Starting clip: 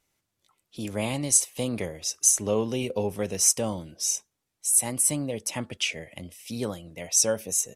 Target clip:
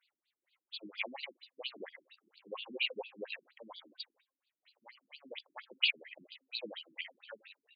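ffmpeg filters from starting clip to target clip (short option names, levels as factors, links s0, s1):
-af "aderivative,acontrast=81,bandreject=f=264.5:t=h:w=4,bandreject=f=529:t=h:w=4,bandreject=f=793.5:t=h:w=4,bandreject=f=1058:t=h:w=4,bandreject=f=1322.5:t=h:w=4,bandreject=f=1587:t=h:w=4,acompressor=threshold=0.0398:ratio=10,afftfilt=real='re*between(b*sr/1024,240*pow(3500/240,0.5+0.5*sin(2*PI*4.3*pts/sr))/1.41,240*pow(3500/240,0.5+0.5*sin(2*PI*4.3*pts/sr))*1.41)':imag='im*between(b*sr/1024,240*pow(3500/240,0.5+0.5*sin(2*PI*4.3*pts/sr))/1.41,240*pow(3500/240,0.5+0.5*sin(2*PI*4.3*pts/sr))*1.41)':win_size=1024:overlap=0.75,volume=2.66"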